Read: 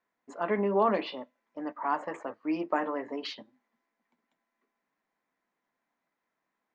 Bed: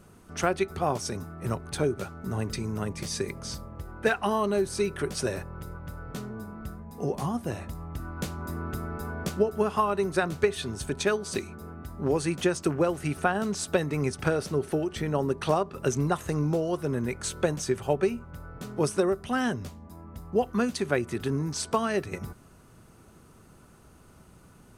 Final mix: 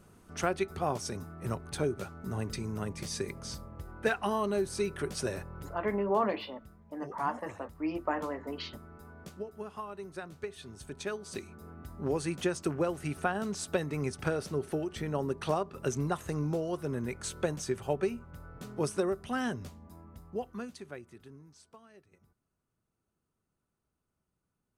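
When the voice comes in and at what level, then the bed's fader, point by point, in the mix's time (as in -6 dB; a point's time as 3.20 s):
5.35 s, -3.0 dB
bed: 5.64 s -4.5 dB
6.16 s -16 dB
10.36 s -16 dB
11.86 s -5.5 dB
19.95 s -5.5 dB
21.83 s -30 dB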